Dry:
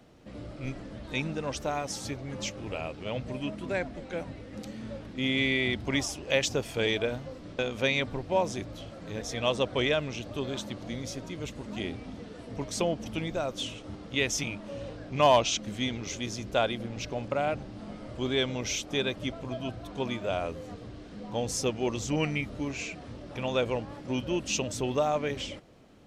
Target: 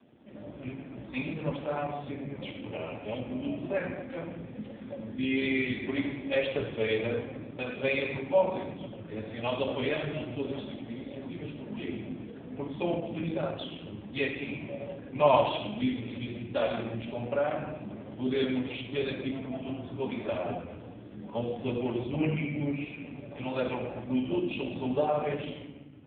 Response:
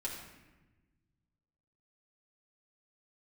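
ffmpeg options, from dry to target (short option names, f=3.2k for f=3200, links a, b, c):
-filter_complex "[0:a]asettb=1/sr,asplit=3[a][b][c];[a]atrim=end=10.654[d];[b]atrim=start=10.65:end=11.1,asetpts=PTS-STARTPTS,afade=t=in:d=0.004:c=qsin,afade=t=out:st=0.446:d=0.004:c=qsin,lowshelf=f=380:g=-3.5[e];[c]atrim=start=11.096[f];[d][e]acrossfade=d=0.004:c1=hsin:c2=qsin[g];[g][f]acrossfade=d=0.004:c1=qsin:c2=hsin[h];[1:a]atrim=start_sample=2205[i];[h][i]afir=irnorm=-1:irlink=0" -ar 8000 -c:a libopencore_amrnb -b:a 5150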